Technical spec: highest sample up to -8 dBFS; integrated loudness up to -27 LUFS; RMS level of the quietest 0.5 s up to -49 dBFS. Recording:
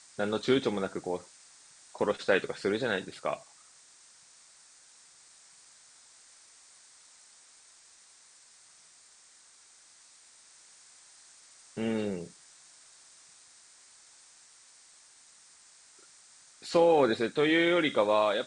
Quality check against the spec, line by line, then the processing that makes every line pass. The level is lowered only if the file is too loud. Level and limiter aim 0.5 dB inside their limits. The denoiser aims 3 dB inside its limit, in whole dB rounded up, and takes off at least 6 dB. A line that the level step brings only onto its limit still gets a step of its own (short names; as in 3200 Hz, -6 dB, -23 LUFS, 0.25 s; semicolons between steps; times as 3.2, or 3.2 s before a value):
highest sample -11.0 dBFS: OK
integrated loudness -28.5 LUFS: OK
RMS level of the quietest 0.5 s -58 dBFS: OK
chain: none